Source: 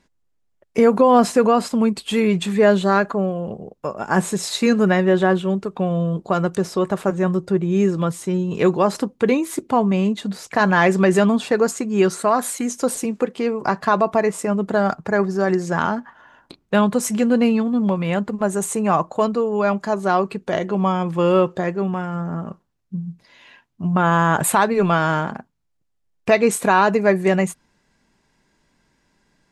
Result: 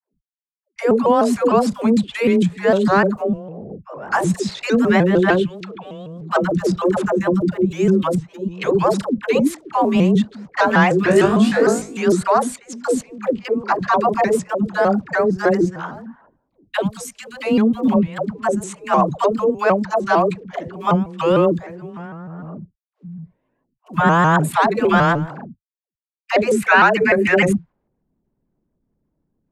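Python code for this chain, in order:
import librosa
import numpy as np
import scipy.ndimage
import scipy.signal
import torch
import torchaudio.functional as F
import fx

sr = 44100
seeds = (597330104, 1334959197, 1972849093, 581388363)

y = fx.weighting(x, sr, curve='D', at=(5.28, 6.07))
y = fx.quant_dither(y, sr, seeds[0], bits=10, dither='none')
y = fx.env_lowpass(y, sr, base_hz=340.0, full_db=-17.0)
y = fx.tone_stack(y, sr, knobs='10-0-10', at=(16.76, 17.4))
y = fx.level_steps(y, sr, step_db=19)
y = fx.dispersion(y, sr, late='lows', ms=142.0, hz=410.0)
y = fx.room_flutter(y, sr, wall_m=3.2, rt60_s=0.35, at=(11.05, 12.02), fade=0.02)
y = fx.spec_box(y, sr, start_s=26.55, length_s=0.96, low_hz=1300.0, high_hz=2900.0, gain_db=8)
y = fx.vibrato_shape(y, sr, shape='saw_up', rate_hz=6.6, depth_cents=160.0)
y = F.gain(torch.from_numpy(y), 5.5).numpy()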